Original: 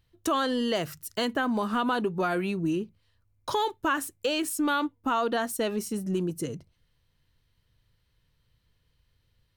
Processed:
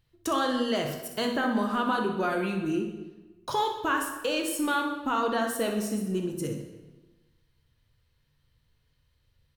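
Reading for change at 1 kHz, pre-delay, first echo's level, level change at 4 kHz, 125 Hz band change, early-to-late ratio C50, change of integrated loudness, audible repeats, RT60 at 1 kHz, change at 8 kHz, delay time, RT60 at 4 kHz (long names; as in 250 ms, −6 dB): +0.5 dB, 8 ms, −10.0 dB, −0.5 dB, −1.0 dB, 4.5 dB, 0.0 dB, 1, 1.1 s, −0.5 dB, 62 ms, 0.95 s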